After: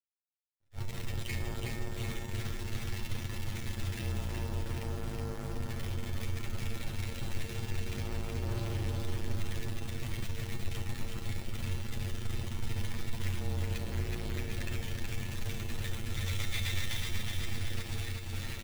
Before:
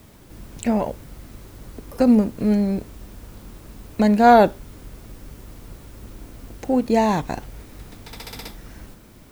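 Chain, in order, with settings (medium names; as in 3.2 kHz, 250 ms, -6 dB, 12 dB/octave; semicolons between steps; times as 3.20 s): octave divider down 2 oct, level +2 dB; Chebyshev low-pass 3.8 kHz, order 5; gate with hold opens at -36 dBFS; FFT band-reject 170–1700 Hz; in parallel at -1 dB: compression, threshold -30 dBFS, peak gain reduction 17.5 dB; on the sum: peak limiter -18.5 dBFS, peak gain reduction 11.5 dB; level rider gain up to 6 dB; companded quantiser 2-bit; granular stretch 2×, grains 35 ms; feedback comb 91 Hz, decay 1.2 s, harmonics all, mix 80%; on a send: feedback delay 371 ms, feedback 59%, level -3.5 dB; on the sum: attacks held to a fixed rise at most 440 dB/s; trim +2.5 dB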